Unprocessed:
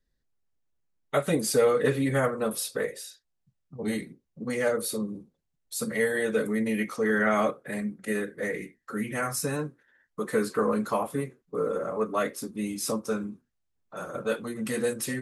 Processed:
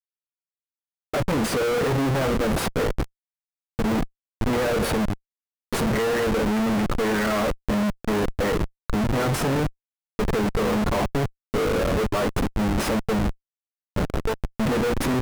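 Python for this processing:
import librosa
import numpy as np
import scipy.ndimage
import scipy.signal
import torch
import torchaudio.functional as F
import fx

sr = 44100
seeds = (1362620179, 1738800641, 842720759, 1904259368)

y = fx.lpc_monotone(x, sr, seeds[0], pitch_hz=220.0, order=10, at=(14.05, 14.58))
y = fx.schmitt(y, sr, flips_db=-31.5)
y = fx.high_shelf(y, sr, hz=2900.0, db=-7.5)
y = fx.upward_expand(y, sr, threshold_db=-40.0, expansion=1.5)
y = y * librosa.db_to_amplitude(9.0)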